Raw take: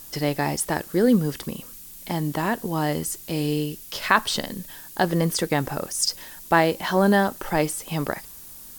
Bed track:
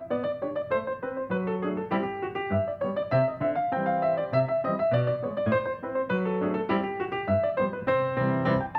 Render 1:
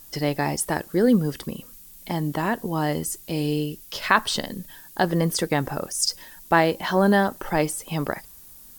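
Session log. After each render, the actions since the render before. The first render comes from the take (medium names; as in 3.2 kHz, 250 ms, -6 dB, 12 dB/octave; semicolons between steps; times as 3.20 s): noise reduction 6 dB, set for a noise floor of -43 dBFS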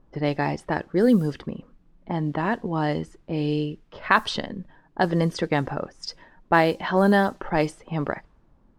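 treble shelf 11 kHz -11 dB; level-controlled noise filter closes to 800 Hz, open at -15 dBFS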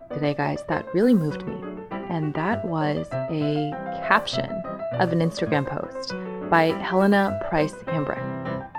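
add bed track -5 dB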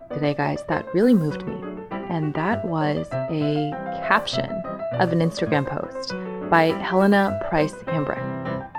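trim +1.5 dB; peak limiter -3 dBFS, peak gain reduction 2 dB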